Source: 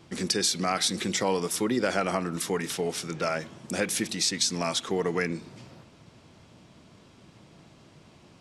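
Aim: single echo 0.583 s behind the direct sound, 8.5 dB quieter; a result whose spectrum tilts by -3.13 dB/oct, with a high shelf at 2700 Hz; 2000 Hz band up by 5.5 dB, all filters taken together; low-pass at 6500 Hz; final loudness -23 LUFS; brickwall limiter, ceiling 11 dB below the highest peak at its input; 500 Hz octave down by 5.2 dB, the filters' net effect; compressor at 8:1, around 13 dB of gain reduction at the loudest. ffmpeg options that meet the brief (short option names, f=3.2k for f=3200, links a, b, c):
-af "lowpass=6.5k,equalizer=f=500:t=o:g=-7,equalizer=f=2k:t=o:g=6,highshelf=f=2.7k:g=3,acompressor=threshold=-34dB:ratio=8,alimiter=level_in=5.5dB:limit=-24dB:level=0:latency=1,volume=-5.5dB,aecho=1:1:583:0.376,volume=16.5dB"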